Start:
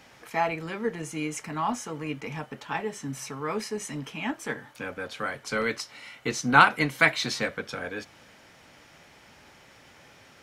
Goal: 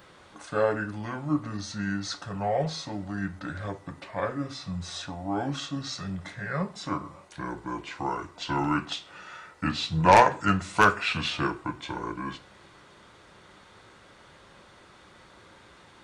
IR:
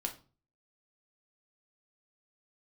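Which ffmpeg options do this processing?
-filter_complex "[0:a]aeval=exprs='0.668*(cos(1*acos(clip(val(0)/0.668,-1,1)))-cos(1*PI/2))+0.15*(cos(5*acos(clip(val(0)/0.668,-1,1)))-cos(5*PI/2))+0.0841*(cos(7*acos(clip(val(0)/0.668,-1,1)))-cos(7*PI/2))':c=same,asetrate=28665,aresample=44100,asplit=2[a][b];[b]aemphasis=mode=production:type=bsi[c];[1:a]atrim=start_sample=2205,lowshelf=f=190:g=10[d];[c][d]afir=irnorm=-1:irlink=0,volume=-7dB[e];[a][e]amix=inputs=2:normalize=0,volume=-4.5dB"

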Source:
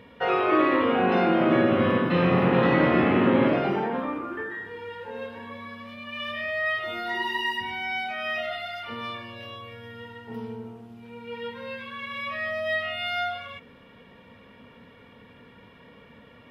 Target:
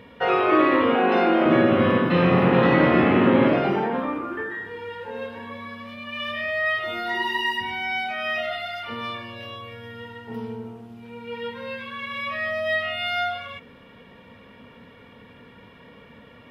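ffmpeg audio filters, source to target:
-filter_complex "[0:a]asettb=1/sr,asplit=3[a][b][c];[a]atrim=end=0.954[d];[b]atrim=start=0.95:end=1.46,asetpts=PTS-STARTPTS,afade=t=in:d=0.004:c=qsin,afade=t=out:st=0.506:d=0.004:c=qsin,highpass=f=230:w=0.5412,highpass=f=230:w=1.3066[e];[c]atrim=start=1.456[f];[d][e]acrossfade=d=0.004:c1=hsin:c2=qsin[g];[g][f]acrossfade=d=0.004:c1=qsin:c2=hsin,volume=3dB"

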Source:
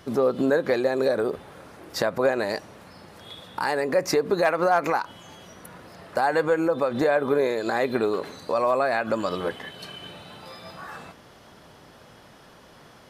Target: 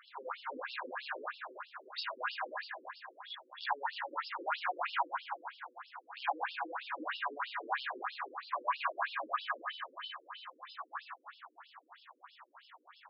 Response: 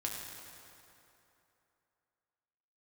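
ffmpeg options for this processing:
-filter_complex "[0:a]asoftclip=type=hard:threshold=-21.5dB,lowshelf=f=680:t=q:w=3:g=-12.5[a];[1:a]atrim=start_sample=2205[b];[a][b]afir=irnorm=-1:irlink=0,afftfilt=real='re*between(b*sr/1024,350*pow(3900/350,0.5+0.5*sin(2*PI*3.1*pts/sr))/1.41,350*pow(3900/350,0.5+0.5*sin(2*PI*3.1*pts/sr))*1.41)':imag='im*between(b*sr/1024,350*pow(3900/350,0.5+0.5*sin(2*PI*3.1*pts/sr))/1.41,350*pow(3900/350,0.5+0.5*sin(2*PI*3.1*pts/sr))*1.41)':win_size=1024:overlap=0.75,volume=-3dB"

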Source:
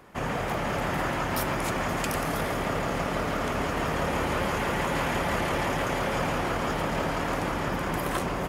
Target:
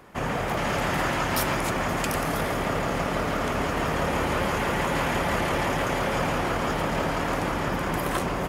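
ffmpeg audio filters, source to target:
-filter_complex "[0:a]asettb=1/sr,asplit=3[a][b][c];[a]atrim=end=0.574[d];[b]atrim=start=0.57:end=1.6,asetpts=PTS-STARTPTS,afade=t=in:d=0.004:c=qsin,afade=t=out:st=1.026:d=0.004:c=qsin,equalizer=f=5.6k:w=0.36:g=4[e];[c]atrim=start=1.596[f];[d][e]acrossfade=d=0.004:c1=hsin:c2=qsin[g];[g][f]acrossfade=d=0.004:c1=qsin:c2=hsin,volume=2dB"

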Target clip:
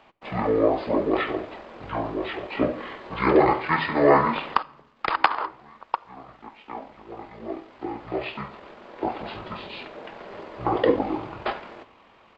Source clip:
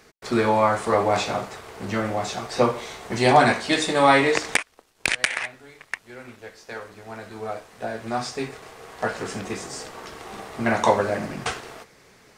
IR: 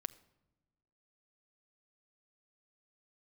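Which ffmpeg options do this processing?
-filter_complex "[0:a]asetrate=22696,aresample=44100,atempo=1.94306,acrossover=split=350 3400:gain=0.158 1 0.141[a][b][c];[a][b][c]amix=inputs=3:normalize=0,asplit=2[d][e];[1:a]atrim=start_sample=2205,lowshelf=f=110:g=7[f];[e][f]afir=irnorm=-1:irlink=0,volume=8.5dB[g];[d][g]amix=inputs=2:normalize=0,volume=-7dB"

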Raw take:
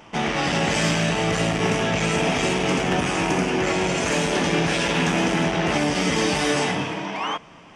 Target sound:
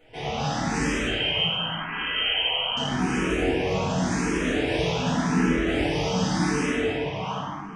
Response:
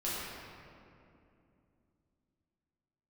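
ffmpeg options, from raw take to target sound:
-filter_complex "[0:a]lowshelf=f=160:g=7.5,asettb=1/sr,asplit=3[a][b][c];[a]atrim=end=1.074[d];[b]atrim=start=1.07:end=2.77,asetpts=PTS-STARTPTS,afade=t=in:d=0.004:c=qsin,afade=t=out:st=1.696:d=0.004:c=qsin,lowpass=f=2.8k:t=q:w=0.5098,lowpass=f=2.8k:t=q:w=0.6013,lowpass=f=2.8k:t=q:w=0.9,lowpass=f=2.8k:t=q:w=2.563,afreqshift=-3300[e];[c]atrim=start=2.766[f];[d][e]acrossfade=d=0.004:c1=hsin:c2=qsin[g];[g][f]acrossfade=d=0.004:c1=qsin:c2=hsin[h];[1:a]atrim=start_sample=2205,asetrate=57330,aresample=44100[i];[h][i]afir=irnorm=-1:irlink=0,asplit=2[j][k];[k]afreqshift=0.87[l];[j][l]amix=inputs=2:normalize=1,volume=-5.5dB"

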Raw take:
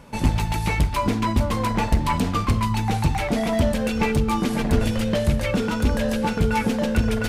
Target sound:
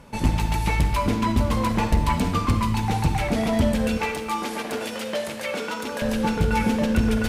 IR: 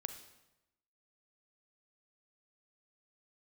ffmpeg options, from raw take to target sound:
-filter_complex "[0:a]asettb=1/sr,asplit=3[a][b][c];[a]atrim=end=3.974[d];[b]atrim=start=3.97:end=6.02,asetpts=PTS-STARTPTS,afade=t=in:d=0.004:c=qsin,afade=t=out:st=2.046:d=0.004:c=qsin,highpass=460[e];[c]atrim=start=6.016[f];[d][e]acrossfade=d=0.004:c1=hsin:c2=qsin[g];[g][f]acrossfade=d=0.004:c1=qsin:c2=hsin[h];[1:a]atrim=start_sample=2205,asetrate=33957,aresample=44100[i];[h][i]afir=irnorm=-1:irlink=0"

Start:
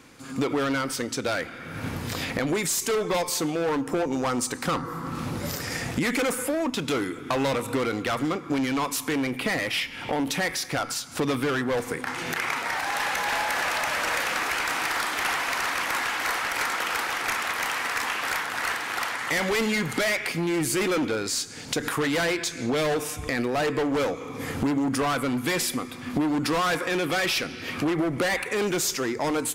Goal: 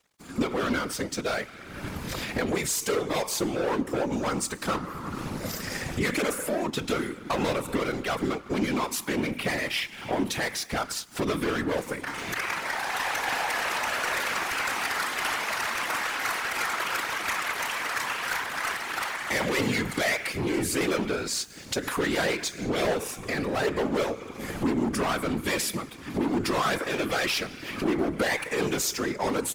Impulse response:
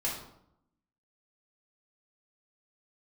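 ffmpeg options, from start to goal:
-af "aeval=exprs='sgn(val(0))*max(abs(val(0))-0.00531,0)':c=same,afftfilt=real='hypot(re,im)*cos(2*PI*random(0))':imag='hypot(re,im)*sin(2*PI*random(1))':win_size=512:overlap=0.75,volume=5dB"

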